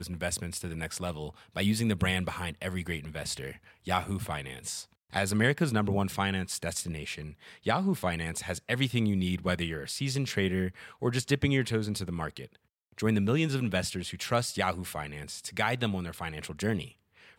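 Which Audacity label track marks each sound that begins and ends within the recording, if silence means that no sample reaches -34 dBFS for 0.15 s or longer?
1.570000	3.510000	sound
3.870000	4.810000	sound
5.140000	7.280000	sound
7.670000	10.690000	sound
11.020000	12.450000	sound
12.990000	16.860000	sound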